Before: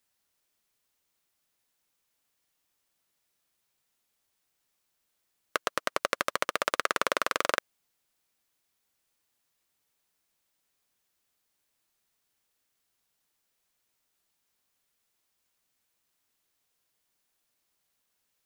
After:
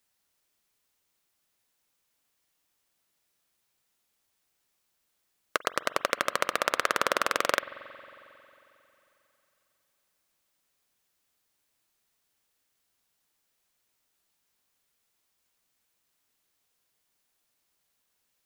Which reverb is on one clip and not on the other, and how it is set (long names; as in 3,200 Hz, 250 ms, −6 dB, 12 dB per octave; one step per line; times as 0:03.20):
spring reverb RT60 3.2 s, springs 45 ms, chirp 60 ms, DRR 14.5 dB
level +1.5 dB